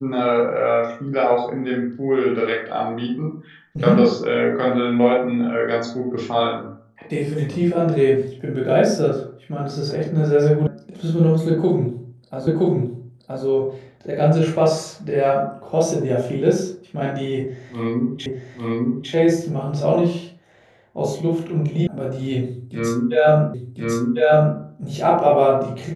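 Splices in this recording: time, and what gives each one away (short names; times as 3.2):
10.67 sound cut off
12.47 repeat of the last 0.97 s
18.26 repeat of the last 0.85 s
21.87 sound cut off
23.54 repeat of the last 1.05 s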